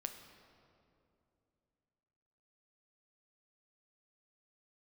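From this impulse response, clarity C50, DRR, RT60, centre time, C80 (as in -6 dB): 8.0 dB, 6.0 dB, 2.7 s, 32 ms, 9.0 dB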